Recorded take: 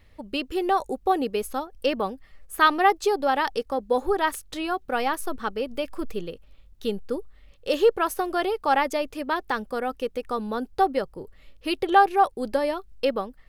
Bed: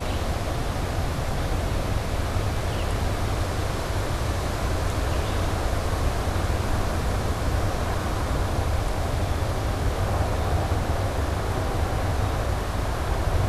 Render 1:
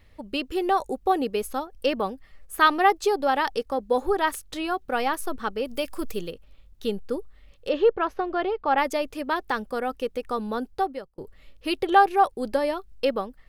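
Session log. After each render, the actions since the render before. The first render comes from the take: 5.65–6.31 high shelf 4800 Hz +11 dB; 7.69–8.78 air absorption 270 m; 10.59–11.18 fade out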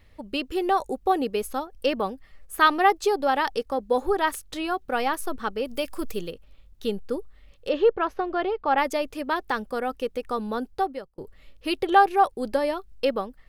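nothing audible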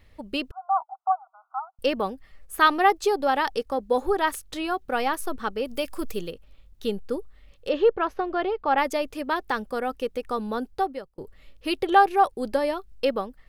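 0.51–1.79 brick-wall FIR band-pass 650–1500 Hz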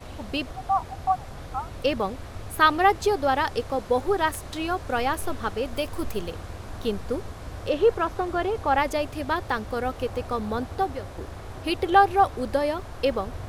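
add bed -13 dB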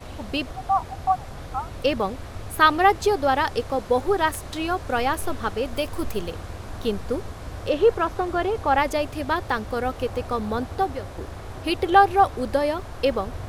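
gain +2 dB

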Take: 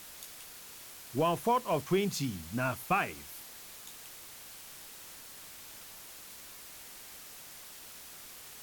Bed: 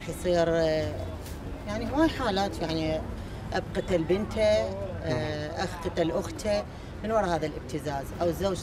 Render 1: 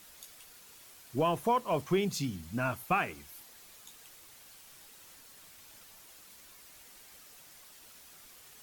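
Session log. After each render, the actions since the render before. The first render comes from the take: denoiser 7 dB, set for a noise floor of -50 dBFS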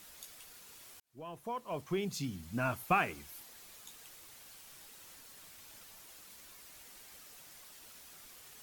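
1–2.96 fade in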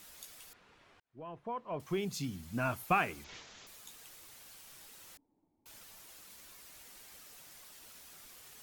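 0.53–1.8 LPF 2200 Hz; 3.24–3.67 careless resampling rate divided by 3×, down none, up filtered; 5.17–5.66 vocal tract filter u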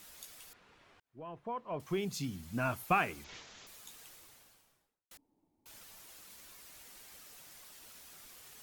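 4–5.11 studio fade out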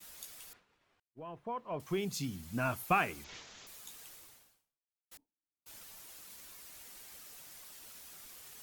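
high shelf 6300 Hz +3.5 dB; expander -54 dBFS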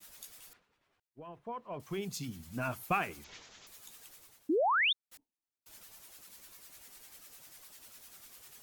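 harmonic tremolo 10 Hz, depth 50%, crossover 920 Hz; 4.49–4.93 painted sound rise 280–3800 Hz -28 dBFS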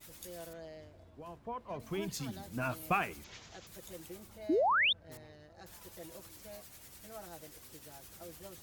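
add bed -23.5 dB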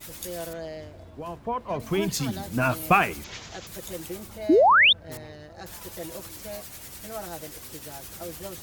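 gain +12 dB

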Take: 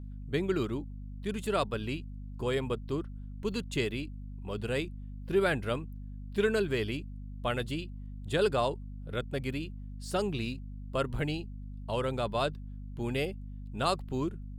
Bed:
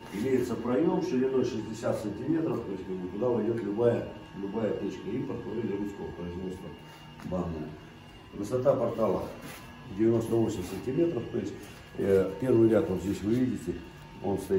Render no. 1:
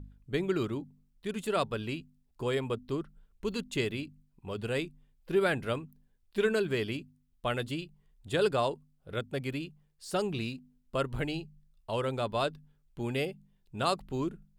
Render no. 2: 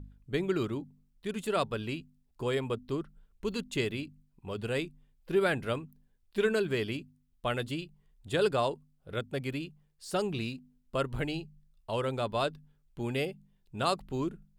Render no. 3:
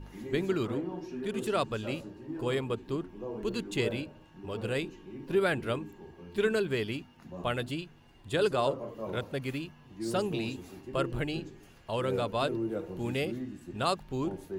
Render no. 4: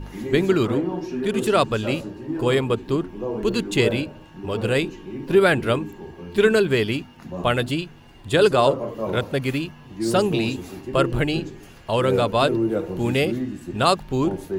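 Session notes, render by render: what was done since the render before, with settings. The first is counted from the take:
de-hum 50 Hz, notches 5
nothing audible
add bed -11 dB
gain +11 dB

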